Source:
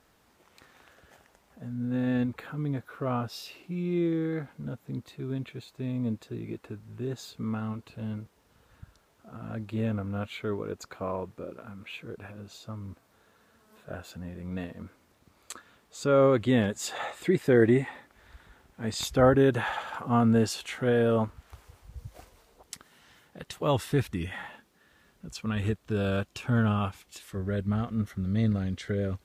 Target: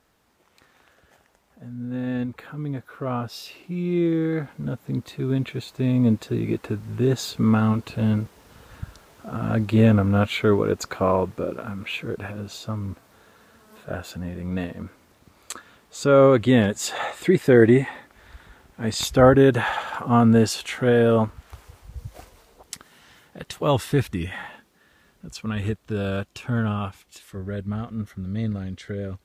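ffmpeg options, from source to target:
-af "dynaudnorm=f=620:g=17:m=16.5dB,volume=-1dB"

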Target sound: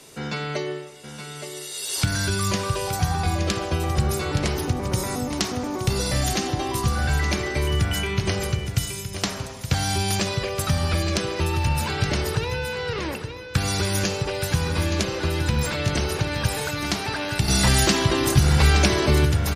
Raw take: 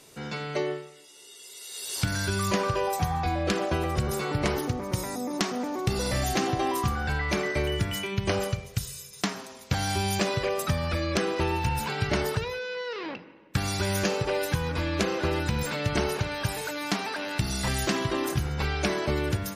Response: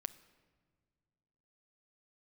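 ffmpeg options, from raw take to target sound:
-filter_complex "[0:a]acrossover=split=160|3000[a][b][c];[b]acompressor=threshold=-32dB:ratio=6[d];[a][d][c]amix=inputs=3:normalize=0,asplit=2[e][f];[1:a]atrim=start_sample=2205,asetrate=23373,aresample=44100[g];[f][g]afir=irnorm=-1:irlink=0,volume=3.5dB[h];[e][h]amix=inputs=2:normalize=0,asettb=1/sr,asplit=3[i][j][k];[i]atrim=end=17.484[l];[j]atrim=start=17.48:end=19.25,asetpts=PTS-STARTPTS,afade=t=in:d=0.004:c=qsin,afade=t=out:st=1.766:d=0.004:c=qsin,acontrast=42[m];[k]atrim=start=19.246[n];[l][m]acrossfade=d=0.004:c1=hsin:c2=qsin[o];[o][n]acrossfade=d=0.004:c1=qsin:c2=hsin,aecho=1:1:870:0.355,volume=-2.5dB"

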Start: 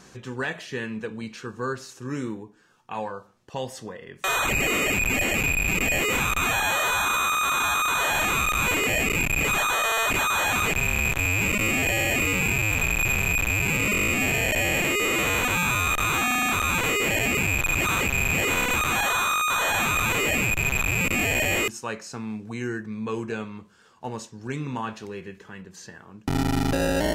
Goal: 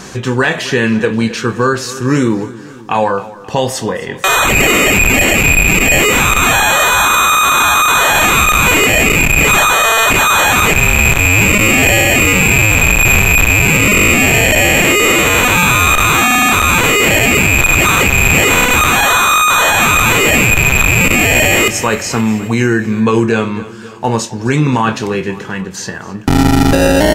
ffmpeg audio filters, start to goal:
-filter_complex "[0:a]asettb=1/sr,asplit=3[a][b][c];[a]atrim=end=16.444[d];[b]atrim=start=16.44:end=17.91,asetpts=PTS-STARTPTS,afade=t=in:d=0.004:c=qsin,afade=t=out:st=1.466:d=0.004:c=qsin,aeval=exprs='0.178*(cos(1*acos(clip(val(0)/0.178,-1,1)))-cos(1*PI/2))+0.00501*(cos(2*acos(clip(val(0)/0.178,-1,1)))-cos(2*PI/2))':c=same[e];[c]atrim=start=17.906[f];[d][e]acrossfade=d=0.004:c1=hsin:c2=qsin[g];[g][f]acrossfade=d=0.004:c1=qsin:c2=hsin,asplit=2[h][i];[i]adelay=26,volume=-12.5dB[j];[h][j]amix=inputs=2:normalize=0,aecho=1:1:265|530|795|1060|1325:0.112|0.0651|0.0377|0.0219|0.0127,alimiter=level_in=20.5dB:limit=-1dB:release=50:level=0:latency=1,volume=-1dB"

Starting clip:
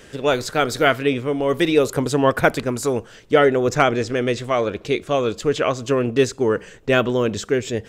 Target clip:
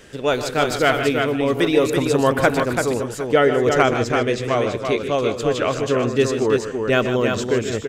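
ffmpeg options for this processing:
-af "aecho=1:1:125|151|335|760:0.211|0.299|0.562|0.126,volume=-1dB"

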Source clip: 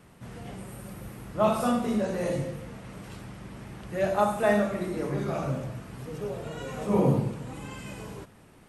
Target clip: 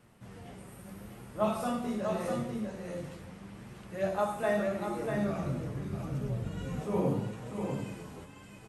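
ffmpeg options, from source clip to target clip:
-filter_complex "[0:a]aecho=1:1:646:0.531,flanger=delay=8.2:depth=4.2:regen=48:speed=0.8:shape=triangular,asettb=1/sr,asplit=3[a][b][c];[a]atrim=end=4.974[d];[b]atrim=start=4.97:end=6.81,asetpts=PTS-STARTPTS,afade=t=in:d=0.004:c=qsin,afade=t=out:st=1.836:d=0.004:c=qsin,asubboost=boost=7.5:cutoff=250[e];[c]atrim=start=6.806[f];[d][e]acrossfade=d=0.004:c1=hsin:c2=qsin[g];[g][f]acrossfade=d=0.004:c1=qsin:c2=hsin,volume=-2.5dB"

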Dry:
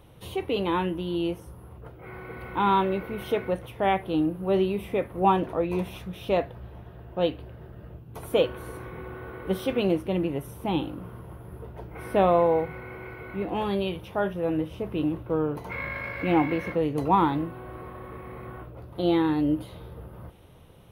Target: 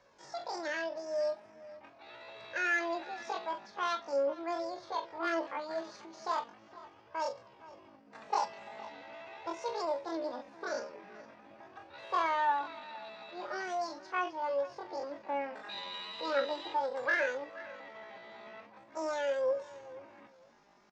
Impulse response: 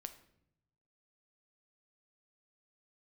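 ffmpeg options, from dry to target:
-filter_complex "[0:a]aresample=11025,aresample=44100,asoftclip=type=tanh:threshold=-13.5dB,acrossover=split=180 4000:gain=0.141 1 0.224[a][b][c];[a][b][c]amix=inputs=3:normalize=0,flanger=delay=3.2:depth=5.7:regen=20:speed=0.41:shape=sinusoidal,asplit=2[d][e];[e]adelay=38,volume=-11dB[f];[d][f]amix=inputs=2:normalize=0,asplit=2[g][h];[h]adelay=464,lowpass=f=2.5k:p=1,volume=-18dB,asplit=2[i][j];[j]adelay=464,lowpass=f=2.5k:p=1,volume=0.19[k];[i][k]amix=inputs=2:normalize=0[l];[g][l]amix=inputs=2:normalize=0,asetrate=78577,aresample=44100,atempo=0.561231,volume=-4.5dB"

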